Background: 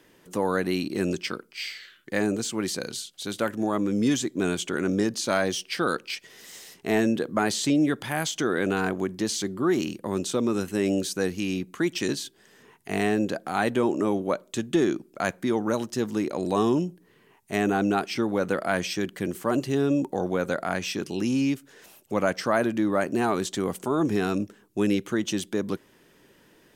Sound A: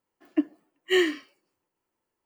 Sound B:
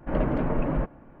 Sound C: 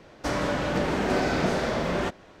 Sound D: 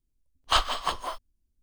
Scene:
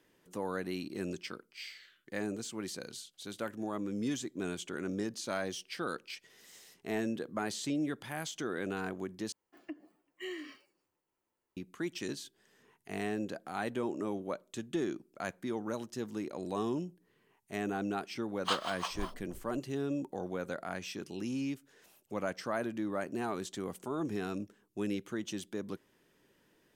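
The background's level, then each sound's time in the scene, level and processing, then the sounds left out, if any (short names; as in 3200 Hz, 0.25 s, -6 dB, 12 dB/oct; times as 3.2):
background -11.5 dB
9.32 replace with A -3.5 dB + compressor 3:1, threshold -40 dBFS
17.96 add D -9.5 dB + bands offset in time highs, lows 0.47 s, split 430 Hz
not used: B, C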